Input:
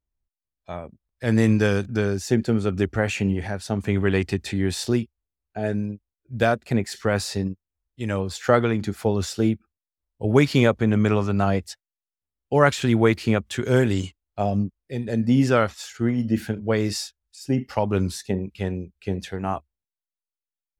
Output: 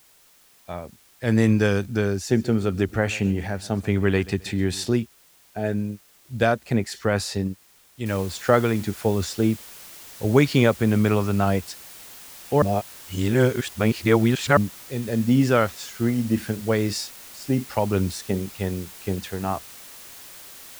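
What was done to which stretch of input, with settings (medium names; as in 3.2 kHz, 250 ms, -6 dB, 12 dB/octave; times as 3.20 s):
2.16–4.89 s: feedback delay 133 ms, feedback 37%, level -20 dB
8.06 s: noise floor step -56 dB -43 dB
12.62–14.57 s: reverse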